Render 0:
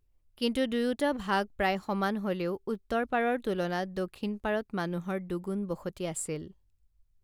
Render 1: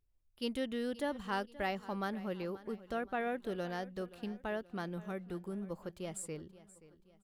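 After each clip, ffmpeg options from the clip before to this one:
ffmpeg -i in.wav -af "aecho=1:1:527|1054|1581|2108:0.126|0.0567|0.0255|0.0115,volume=-8dB" out.wav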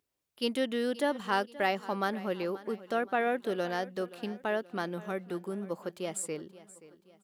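ffmpeg -i in.wav -af "highpass=240,volume=7.5dB" out.wav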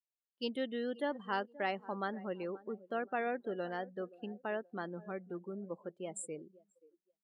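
ffmpeg -i in.wav -af "afftdn=noise_reduction=29:noise_floor=-40,volume=-6.5dB" out.wav

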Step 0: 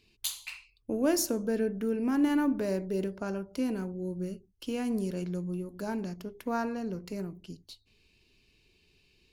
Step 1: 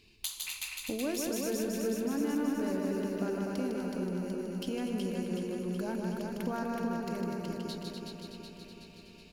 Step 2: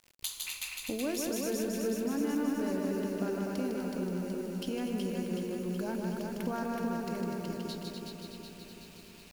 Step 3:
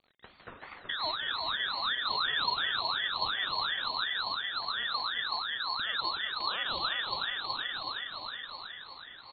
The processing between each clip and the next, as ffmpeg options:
ffmpeg -i in.wav -filter_complex "[0:a]asplit=2[link_01][link_02];[link_02]aecho=0:1:154.5|247.8:0.631|0.447[link_03];[link_01][link_03]amix=inputs=2:normalize=0,acompressor=threshold=-42dB:ratio=2.5,asplit=2[link_04][link_05];[link_05]aecho=0:1:373|746|1119|1492|1865|2238|2611|2984|3357:0.631|0.379|0.227|0.136|0.0818|0.0491|0.0294|0.0177|0.0106[link_06];[link_04][link_06]amix=inputs=2:normalize=0,volume=4.5dB" out.wav
ffmpeg -i in.wav -af "acrusher=bits=8:mix=0:aa=0.000001" out.wav
ffmpeg -i in.wav -af "aecho=1:1:1046:0.398,lowpass=frequency=2500:width_type=q:width=0.5098,lowpass=frequency=2500:width_type=q:width=0.6013,lowpass=frequency=2500:width_type=q:width=0.9,lowpass=frequency=2500:width_type=q:width=2.563,afreqshift=-2900,aeval=exprs='val(0)*sin(2*PI*1200*n/s+1200*0.4/2.8*sin(2*PI*2.8*n/s))':channel_layout=same,volume=3dB" out.wav

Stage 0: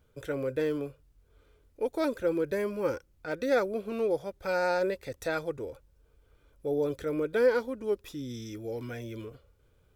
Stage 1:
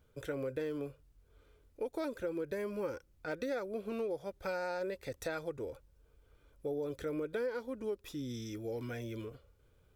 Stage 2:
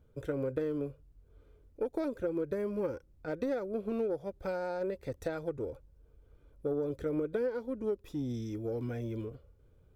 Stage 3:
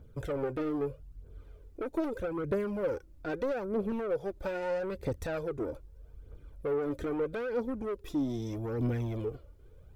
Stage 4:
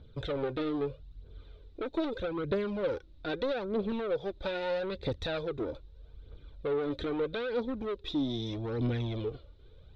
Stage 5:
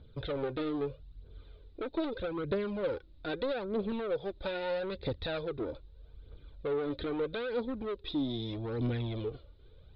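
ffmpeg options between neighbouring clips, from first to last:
ffmpeg -i in.wav -af "acompressor=threshold=-32dB:ratio=6,volume=-2dB" out.wav
ffmpeg -i in.wav -af "tiltshelf=frequency=890:gain=6.5,aeval=exprs='0.075*(cos(1*acos(clip(val(0)/0.075,-1,1)))-cos(1*PI/2))+0.0075*(cos(3*acos(clip(val(0)/0.075,-1,1)))-cos(3*PI/2))':channel_layout=same,volume=2dB" out.wav
ffmpeg -i in.wav -af "asoftclip=type=tanh:threshold=-35dB,aphaser=in_gain=1:out_gain=1:delay=3.5:decay=0.49:speed=0.79:type=triangular,volume=5.5dB" out.wav
ffmpeg -i in.wav -af "lowpass=frequency=3800:width_type=q:width=8.4" out.wav
ffmpeg -i in.wav -af "aresample=11025,aresample=44100,volume=-1.5dB" out.wav

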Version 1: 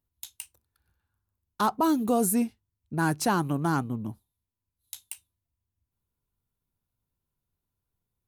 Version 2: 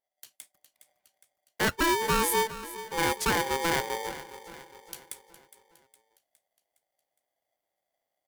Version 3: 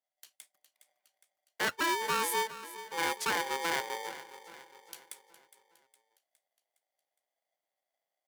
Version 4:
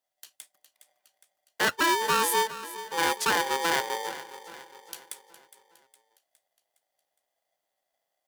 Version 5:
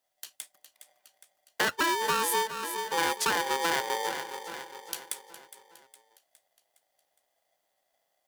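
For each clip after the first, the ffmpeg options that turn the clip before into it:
ffmpeg -i in.wav -af "aecho=1:1:412|824|1236|1648|2060:0.178|0.0907|0.0463|0.0236|0.012,dynaudnorm=framelen=190:gausssize=7:maxgain=6.5dB,aeval=exprs='val(0)*sgn(sin(2*PI*670*n/s))':channel_layout=same,volume=-8dB" out.wav
ffmpeg -i in.wav -af "highpass=frequency=630:poles=1,highshelf=frequency=7300:gain=-5,volume=-2.5dB" out.wav
ffmpeg -i in.wav -af "bandreject=frequency=2200:width=11,volume=6.5dB" out.wav
ffmpeg -i in.wav -af "acompressor=threshold=-31dB:ratio=3,volume=5dB" out.wav

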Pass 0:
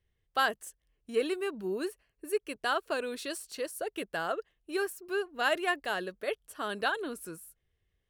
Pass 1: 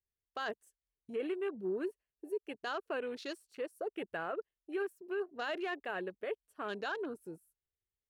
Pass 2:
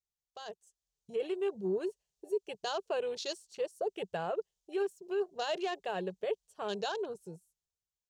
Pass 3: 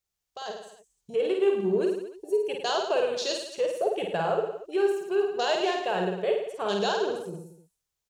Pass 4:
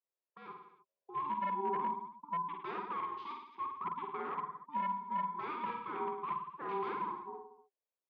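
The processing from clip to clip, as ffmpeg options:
ffmpeg -i in.wav -af "afwtdn=0.00708,equalizer=frequency=400:width=2.5:gain=3.5,alimiter=level_in=0.5dB:limit=-24dB:level=0:latency=1:release=20,volume=-0.5dB,volume=-4.5dB" out.wav
ffmpeg -i in.wav -af "firequalizer=gain_entry='entry(110,0);entry(180,6);entry(260,-17);entry(390,0);entry(860,1);entry(1300,-9);entry(2100,-8);entry(3100,2);entry(6600,10);entry(11000,-5)':delay=0.05:min_phase=1,dynaudnorm=framelen=110:gausssize=17:maxgain=11dB,volume=-6.5dB" out.wav
ffmpeg -i in.wav -af "aecho=1:1:50|105|165.5|232|305.3:0.631|0.398|0.251|0.158|0.1,volume=7dB" out.wav
ffmpeg -i in.wav -af "aeval=exprs='val(0)*sin(2*PI*590*n/s)':channel_layout=same,aeval=exprs='0.0841*(abs(mod(val(0)/0.0841+3,4)-2)-1)':channel_layout=same,highpass=frequency=250:width=0.5412,highpass=frequency=250:width=1.3066,equalizer=frequency=260:width_type=q:width=4:gain=-7,equalizer=frequency=380:width_type=q:width=4:gain=9,equalizer=frequency=610:width_type=q:width=4:gain=-7,equalizer=frequency=950:width_type=q:width=4:gain=5,equalizer=frequency=1400:width_type=q:width=4:gain=-7,equalizer=frequency=2000:width_type=q:width=4:gain=-6,lowpass=frequency=2300:width=0.5412,lowpass=frequency=2300:width=1.3066,volume=-6.5dB" out.wav

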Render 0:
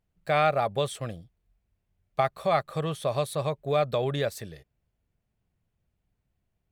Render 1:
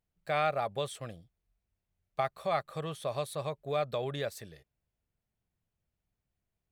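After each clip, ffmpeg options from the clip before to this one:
ffmpeg -i in.wav -af "lowshelf=frequency=420:gain=-3.5,volume=-5.5dB" out.wav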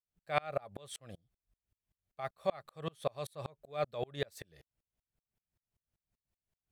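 ffmpeg -i in.wav -af "aeval=exprs='val(0)*pow(10,-34*if(lt(mod(-5.2*n/s,1),2*abs(-5.2)/1000),1-mod(-5.2*n/s,1)/(2*abs(-5.2)/1000),(mod(-5.2*n/s,1)-2*abs(-5.2)/1000)/(1-2*abs(-5.2)/1000))/20)':channel_layout=same,volume=4dB" out.wav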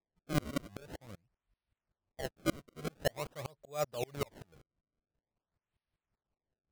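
ffmpeg -i in.wav -af "acrusher=samples=29:mix=1:aa=0.000001:lfo=1:lforange=46.4:lforate=0.47" out.wav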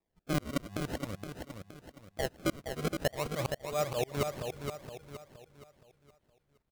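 ffmpeg -i in.wav -af "acompressor=threshold=-37dB:ratio=5,aecho=1:1:469|938|1407|1876|2345:0.501|0.195|0.0762|0.0297|0.0116,volume=9dB" out.wav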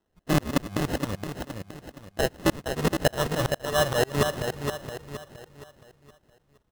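ffmpeg -i in.wav -af "acrusher=samples=19:mix=1:aa=0.000001,volume=8.5dB" out.wav

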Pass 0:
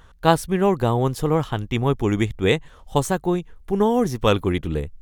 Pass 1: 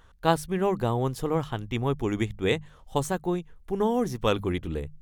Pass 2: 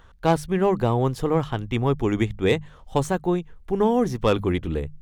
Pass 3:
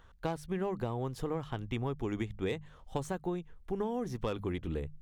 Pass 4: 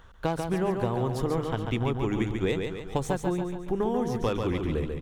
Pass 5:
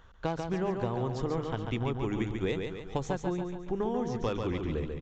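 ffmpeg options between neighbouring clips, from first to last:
ffmpeg -i in.wav -af "bandreject=frequency=50:width_type=h:width=6,bandreject=frequency=100:width_type=h:width=6,bandreject=frequency=150:width_type=h:width=6,bandreject=frequency=200:width_type=h:width=6,volume=-6dB" out.wav
ffmpeg -i in.wav -filter_complex "[0:a]equalizer=frequency=15000:width=0.32:gain=-8.5,acrossover=split=620[link_01][link_02];[link_02]asoftclip=type=tanh:threshold=-21.5dB[link_03];[link_01][link_03]amix=inputs=2:normalize=0,volume=5dB" out.wav
ffmpeg -i in.wav -af "acompressor=threshold=-23dB:ratio=6,volume=-7.5dB" out.wav
ffmpeg -i in.wav -af "aecho=1:1:141|282|423|564|705|846:0.562|0.281|0.141|0.0703|0.0351|0.0176,volume=6.5dB" out.wav
ffmpeg -i in.wav -af "aresample=16000,aresample=44100,volume=-4dB" out.wav

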